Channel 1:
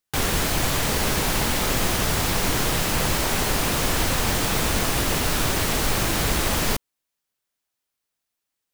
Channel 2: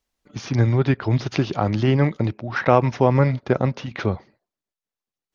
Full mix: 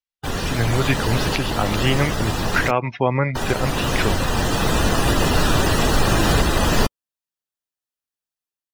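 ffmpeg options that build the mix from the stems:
ffmpeg -i stem1.wav -i stem2.wav -filter_complex "[0:a]bandreject=frequency=2200:width=9.5,adelay=100,volume=-0.5dB,asplit=3[link_01][link_02][link_03];[link_01]atrim=end=2.71,asetpts=PTS-STARTPTS,afade=type=out:start_time=2.706:duration=0.004:curve=hsin[link_04];[link_02]atrim=start=2.71:end=3.35,asetpts=PTS-STARTPTS,volume=0[link_05];[link_03]atrim=start=3.35,asetpts=PTS-STARTPTS,afade=type=in:duration=0.004:curve=hsin[link_06];[link_04][link_05][link_06]concat=n=3:v=0:a=1[link_07];[1:a]equalizer=frequency=3100:width_type=o:width=2.5:gain=13,volume=-5.5dB[link_08];[link_07][link_08]amix=inputs=2:normalize=0,afftdn=noise_reduction=20:noise_floor=-30,dynaudnorm=framelen=500:gausssize=3:maxgain=11dB,alimiter=limit=-6dB:level=0:latency=1:release=420" out.wav

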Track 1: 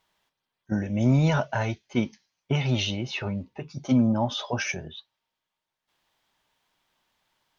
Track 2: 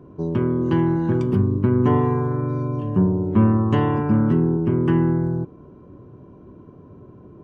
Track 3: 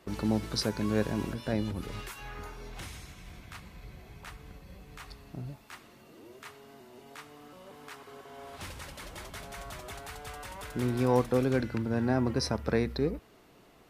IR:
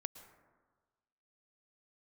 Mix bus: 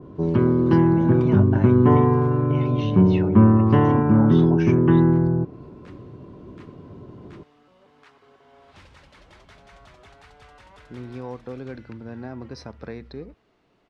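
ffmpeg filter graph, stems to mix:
-filter_complex "[0:a]volume=0.5dB[link_01];[1:a]volume=2.5dB[link_02];[2:a]adelay=150,volume=-6.5dB[link_03];[link_01][link_03]amix=inputs=2:normalize=0,acompressor=threshold=-30dB:ratio=2.5,volume=0dB[link_04];[link_02][link_04]amix=inputs=2:normalize=0,lowpass=4600,adynamicequalizer=threshold=0.00708:dfrequency=2400:dqfactor=0.7:tfrequency=2400:tqfactor=0.7:attack=5:release=100:ratio=0.375:range=4:mode=cutabove:tftype=highshelf"

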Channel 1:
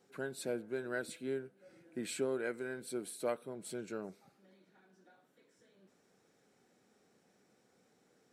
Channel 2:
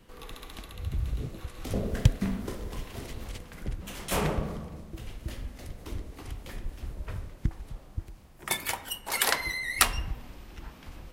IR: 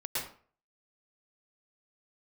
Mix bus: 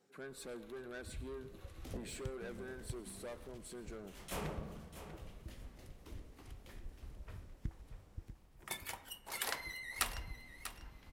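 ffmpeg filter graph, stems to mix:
-filter_complex "[0:a]asoftclip=type=tanh:threshold=-38.5dB,volume=-4.5dB,asplit=3[link_01][link_02][link_03];[link_02]volume=-19.5dB[link_04];[1:a]adelay=200,volume=-13.5dB,asplit=2[link_05][link_06];[link_06]volume=-11dB[link_07];[link_03]apad=whole_len=499416[link_08];[link_05][link_08]sidechaincompress=threshold=-56dB:ratio=8:attack=16:release=134[link_09];[2:a]atrim=start_sample=2205[link_10];[link_04][link_10]afir=irnorm=-1:irlink=0[link_11];[link_07]aecho=0:1:643|1286|1929:1|0.2|0.04[link_12];[link_01][link_09][link_11][link_12]amix=inputs=4:normalize=0"

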